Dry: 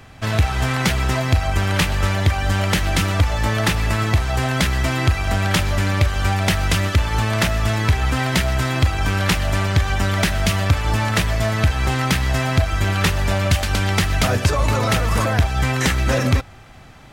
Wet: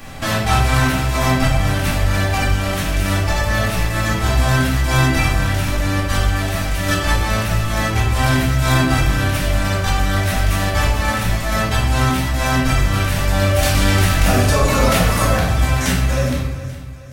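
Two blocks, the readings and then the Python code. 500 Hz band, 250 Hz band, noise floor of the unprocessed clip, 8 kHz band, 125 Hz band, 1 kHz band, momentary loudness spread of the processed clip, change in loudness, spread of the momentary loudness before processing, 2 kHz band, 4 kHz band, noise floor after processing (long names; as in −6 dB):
+3.0 dB, +3.0 dB, −41 dBFS, +3.0 dB, +1.0 dB, +3.0 dB, 5 LU, +2.0 dB, 2 LU, +2.0 dB, +1.0 dB, −23 dBFS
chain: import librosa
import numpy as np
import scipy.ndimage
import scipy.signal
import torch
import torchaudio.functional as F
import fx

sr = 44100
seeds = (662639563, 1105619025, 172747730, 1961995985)

y = fx.fade_out_tail(x, sr, length_s=4.51)
y = fx.high_shelf(y, sr, hz=7200.0, db=10.5)
y = fx.over_compress(y, sr, threshold_db=-22.0, ratio=-0.5)
y = fx.echo_feedback(y, sr, ms=419, feedback_pct=45, wet_db=-16.0)
y = fx.room_shoebox(y, sr, seeds[0], volume_m3=280.0, walls='mixed', distance_m=2.3)
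y = y * librosa.db_to_amplitude(-1.5)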